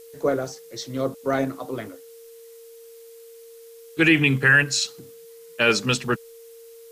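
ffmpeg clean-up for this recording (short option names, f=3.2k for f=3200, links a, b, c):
-af "adeclick=t=4,bandreject=f=460:w=30,agate=range=-21dB:threshold=-37dB"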